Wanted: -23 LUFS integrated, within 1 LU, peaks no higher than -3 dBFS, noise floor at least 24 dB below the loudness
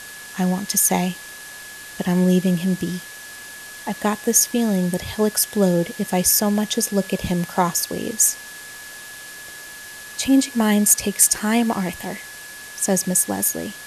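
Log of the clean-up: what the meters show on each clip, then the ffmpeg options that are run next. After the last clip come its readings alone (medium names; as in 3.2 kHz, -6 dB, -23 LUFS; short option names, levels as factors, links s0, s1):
steady tone 1.7 kHz; tone level -38 dBFS; noise floor -38 dBFS; noise floor target -44 dBFS; loudness -19.5 LUFS; peak level -1.0 dBFS; loudness target -23.0 LUFS
-> -af "bandreject=f=1700:w=30"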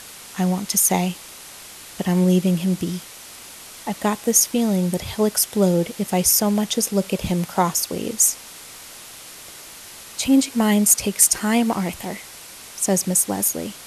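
steady tone not found; noise floor -40 dBFS; noise floor target -44 dBFS
-> -af "afftdn=nr=6:nf=-40"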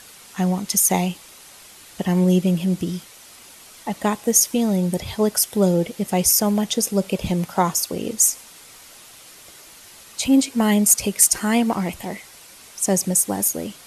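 noise floor -45 dBFS; loudness -19.5 LUFS; peak level -1.0 dBFS; loudness target -23.0 LUFS
-> -af "volume=0.668"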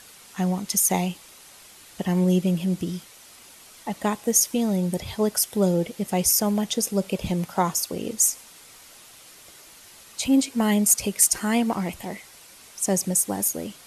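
loudness -23.0 LUFS; peak level -4.5 dBFS; noise floor -49 dBFS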